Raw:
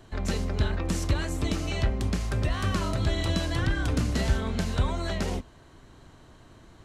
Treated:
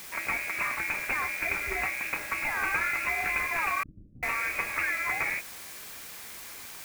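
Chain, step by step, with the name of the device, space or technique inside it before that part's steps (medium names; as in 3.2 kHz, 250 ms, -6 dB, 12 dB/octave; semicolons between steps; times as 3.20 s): scrambled radio voice (band-pass 380–2800 Hz; frequency inversion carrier 2.7 kHz; white noise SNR 12 dB); 3.83–4.23 s: inverse Chebyshev low-pass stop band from 840 Hz, stop band 60 dB; trim +5.5 dB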